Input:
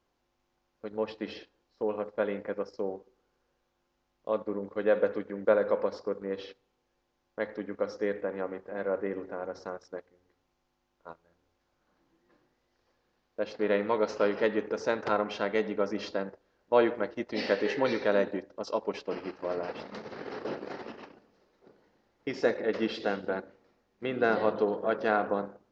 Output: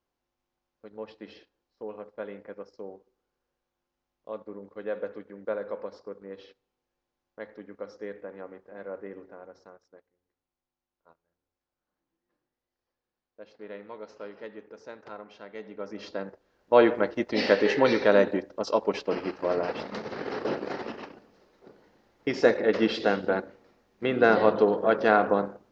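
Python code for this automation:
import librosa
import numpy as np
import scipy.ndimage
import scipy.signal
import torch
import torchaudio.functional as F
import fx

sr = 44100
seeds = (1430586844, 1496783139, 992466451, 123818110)

y = fx.gain(x, sr, db=fx.line((9.21, -7.5), (9.88, -14.5), (15.47, -14.5), (16.16, -2.0), (16.88, 6.0)))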